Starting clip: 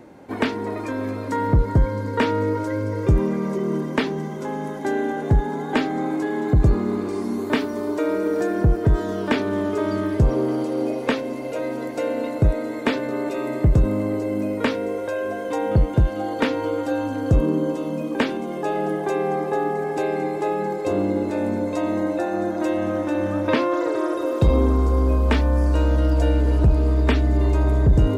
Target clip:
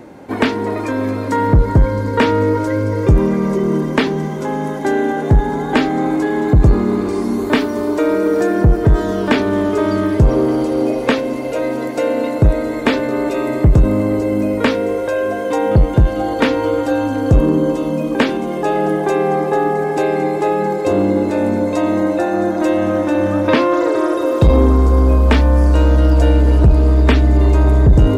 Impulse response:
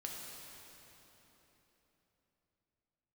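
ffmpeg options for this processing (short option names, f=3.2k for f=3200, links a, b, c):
-filter_complex "[0:a]acontrast=82,asplit=2[a][b];[1:a]atrim=start_sample=2205[c];[b][c]afir=irnorm=-1:irlink=0,volume=-20dB[d];[a][d]amix=inputs=2:normalize=0"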